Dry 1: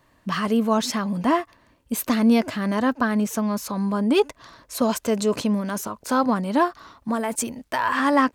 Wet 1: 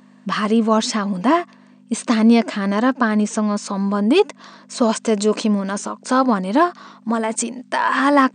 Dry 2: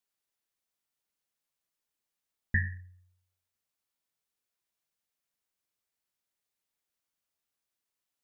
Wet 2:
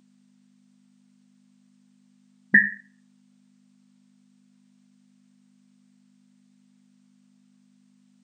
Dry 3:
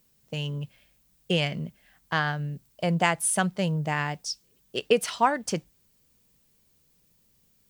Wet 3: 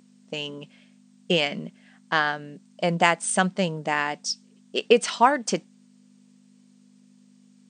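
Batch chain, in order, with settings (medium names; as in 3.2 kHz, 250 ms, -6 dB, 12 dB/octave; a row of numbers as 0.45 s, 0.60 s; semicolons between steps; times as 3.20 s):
hum 50 Hz, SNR 19 dB; brick-wall FIR band-pass 170–9100 Hz; peak normalisation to -3 dBFS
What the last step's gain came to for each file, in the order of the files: +4.5 dB, +15.0 dB, +4.0 dB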